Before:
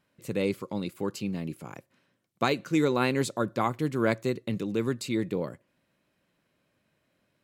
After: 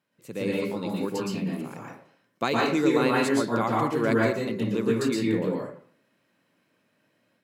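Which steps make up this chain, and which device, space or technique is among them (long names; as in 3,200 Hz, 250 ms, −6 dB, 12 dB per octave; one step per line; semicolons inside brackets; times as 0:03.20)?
far laptop microphone (convolution reverb RT60 0.55 s, pre-delay 110 ms, DRR −3.5 dB; high-pass filter 150 Hz 12 dB per octave; automatic gain control gain up to 5 dB)
level −5.5 dB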